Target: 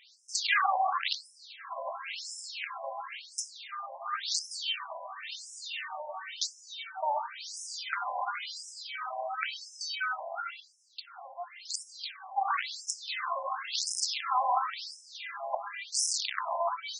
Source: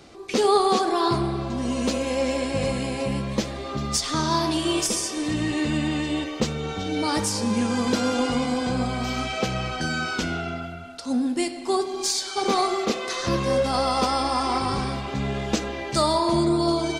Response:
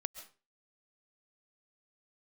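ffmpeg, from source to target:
-af "aeval=exprs='(mod(4.47*val(0)+1,2)-1)/4.47':channel_layout=same,afftfilt=real='re*between(b*sr/1024,750*pow(7300/750,0.5+0.5*sin(2*PI*0.95*pts/sr))/1.41,750*pow(7300/750,0.5+0.5*sin(2*PI*0.95*pts/sr))*1.41)':imag='im*between(b*sr/1024,750*pow(7300/750,0.5+0.5*sin(2*PI*0.95*pts/sr))/1.41,750*pow(7300/750,0.5+0.5*sin(2*PI*0.95*pts/sr))*1.41)':win_size=1024:overlap=0.75"

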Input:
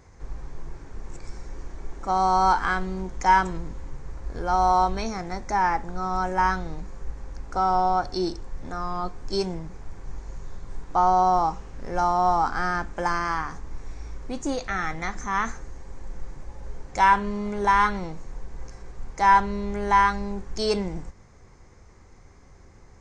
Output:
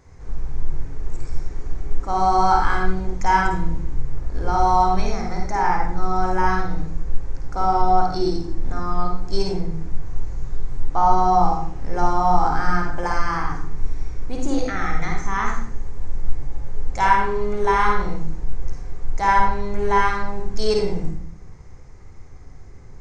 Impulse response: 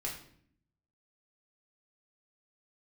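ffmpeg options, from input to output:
-filter_complex "[0:a]asplit=2[link_01][link_02];[1:a]atrim=start_sample=2205,lowshelf=frequency=310:gain=8,adelay=51[link_03];[link_02][link_03]afir=irnorm=-1:irlink=0,volume=-2dB[link_04];[link_01][link_04]amix=inputs=2:normalize=0,volume=-1dB"

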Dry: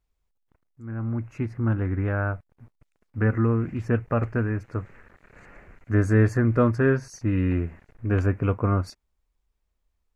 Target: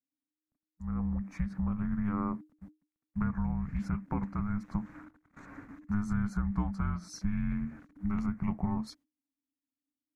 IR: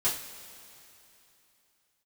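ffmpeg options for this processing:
-af "agate=range=-22dB:threshold=-49dB:ratio=16:detection=peak,acompressor=threshold=-29dB:ratio=6,afreqshift=-310"

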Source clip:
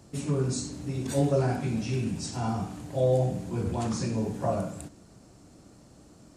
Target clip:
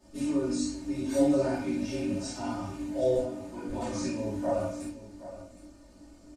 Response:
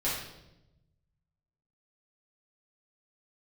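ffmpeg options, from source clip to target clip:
-filter_complex "[0:a]asettb=1/sr,asplit=3[link_01][link_02][link_03];[link_01]atrim=end=3.174[link_04];[link_02]atrim=start=3.17:end=3.69,asetpts=PTS-STARTPTS,afade=type=in:duration=0.004:curve=qsin,afade=type=out:start_time=0.516:duration=0.004:curve=qsin,acrossover=split=260|2000[link_05][link_06][link_07];[link_05]acompressor=threshold=-42dB:ratio=4[link_08];[link_06]acompressor=threshold=-32dB:ratio=4[link_09];[link_07]acompressor=threshold=-56dB:ratio=4[link_10];[link_08][link_09][link_10]amix=inputs=3:normalize=0[link_11];[link_03]atrim=start=3.686[link_12];[link_04][link_11]acrossfade=duration=0.004:curve1=hsin:curve2=qsin[link_13];[link_13][link_12]acrossfade=duration=0.004:curve1=qsin:curve2=hsin,flanger=delay=18:depth=2.9:speed=2.6,aecho=1:1:3.3:0.98,aecho=1:1:768:0.188[link_14];[1:a]atrim=start_sample=2205,atrim=end_sample=3528[link_15];[link_14][link_15]afir=irnorm=-1:irlink=0,volume=-7.5dB"

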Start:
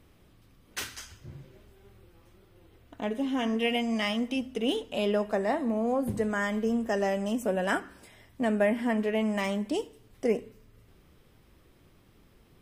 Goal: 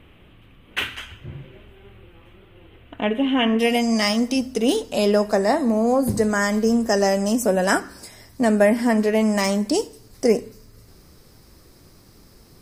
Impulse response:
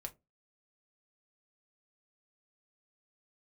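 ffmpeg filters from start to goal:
-af "asetnsamples=nb_out_samples=441:pad=0,asendcmd='3.59 highshelf g 6',highshelf=frequency=3900:width_type=q:width=3:gain=-10,volume=9dB"

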